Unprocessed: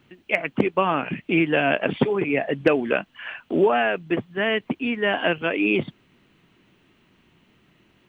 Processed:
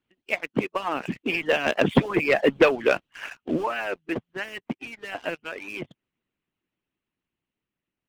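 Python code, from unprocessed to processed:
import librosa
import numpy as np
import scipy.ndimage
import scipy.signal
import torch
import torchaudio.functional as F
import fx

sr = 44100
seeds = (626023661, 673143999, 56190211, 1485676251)

y = fx.doppler_pass(x, sr, speed_mps=9, closest_m=5.5, pass_at_s=2.33)
y = fx.leveller(y, sr, passes=2)
y = fx.hpss(y, sr, part='harmonic', gain_db=-18)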